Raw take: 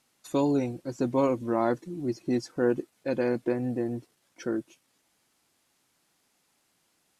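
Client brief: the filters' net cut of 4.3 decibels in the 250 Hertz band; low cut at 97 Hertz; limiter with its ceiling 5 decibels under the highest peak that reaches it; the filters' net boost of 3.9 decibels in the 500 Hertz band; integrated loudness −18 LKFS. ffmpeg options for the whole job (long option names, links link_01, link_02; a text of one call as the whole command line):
ffmpeg -i in.wav -af "highpass=97,equalizer=frequency=250:width_type=o:gain=-8.5,equalizer=frequency=500:width_type=o:gain=7,volume=11.5dB,alimiter=limit=-5.5dB:level=0:latency=1" out.wav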